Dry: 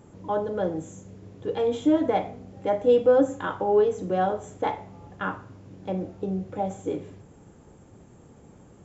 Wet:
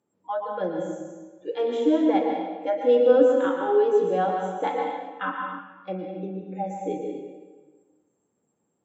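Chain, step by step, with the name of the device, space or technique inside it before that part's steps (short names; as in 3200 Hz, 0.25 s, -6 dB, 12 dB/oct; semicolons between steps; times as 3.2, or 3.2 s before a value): spectral noise reduction 24 dB; supermarket ceiling speaker (BPF 220–5700 Hz; reverb RT60 1.4 s, pre-delay 0.107 s, DRR 2 dB); 4.7–5.59 comb 3.9 ms, depth 78%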